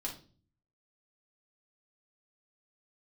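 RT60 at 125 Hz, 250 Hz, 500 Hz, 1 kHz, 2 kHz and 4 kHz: 0.85, 0.70, 0.50, 0.35, 0.30, 0.35 s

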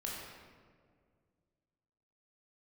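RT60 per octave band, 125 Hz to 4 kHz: 2.7, 2.5, 2.2, 1.7, 1.4, 1.0 s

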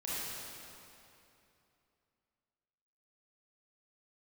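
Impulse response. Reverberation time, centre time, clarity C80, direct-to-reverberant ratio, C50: 2.8 s, 0.194 s, -3.0 dB, -9.5 dB, -6.0 dB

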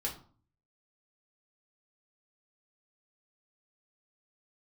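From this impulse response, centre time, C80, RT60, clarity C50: 18 ms, 15.0 dB, 0.45 s, 10.0 dB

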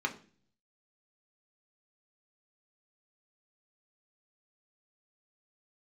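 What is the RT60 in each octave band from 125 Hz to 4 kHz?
0.90, 0.70, 0.50, 0.35, 0.40, 0.45 s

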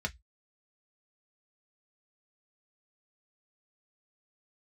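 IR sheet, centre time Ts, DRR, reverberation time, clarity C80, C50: 5 ms, 3.0 dB, 0.10 s, 39.5 dB, 26.5 dB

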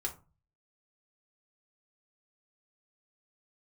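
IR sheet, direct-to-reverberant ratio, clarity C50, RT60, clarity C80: -0.5 dB, 13.5 dB, 0.30 s, 19.5 dB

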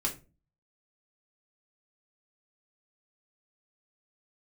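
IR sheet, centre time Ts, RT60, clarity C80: 15 ms, 0.30 s, 19.5 dB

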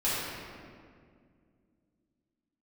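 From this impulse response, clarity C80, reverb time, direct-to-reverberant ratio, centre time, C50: -1.0 dB, 2.1 s, -11.5 dB, 0.14 s, -3.5 dB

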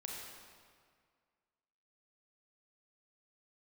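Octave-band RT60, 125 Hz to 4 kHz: 2.0, 2.0, 1.9, 2.0, 1.7, 1.5 s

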